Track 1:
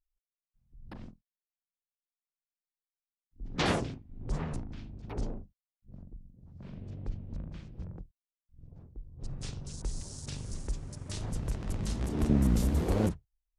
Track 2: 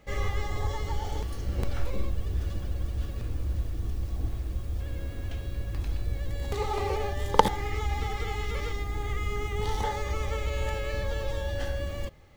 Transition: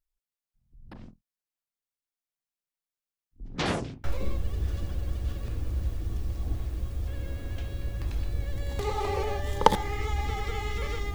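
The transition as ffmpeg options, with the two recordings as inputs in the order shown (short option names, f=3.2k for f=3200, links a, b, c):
-filter_complex "[0:a]apad=whole_dur=11.14,atrim=end=11.14,atrim=end=4.042[a];[1:a]atrim=start=1.768:end=8.87[b];[a][b]acrossfade=d=0.004:c1=hsin:c2=hsin"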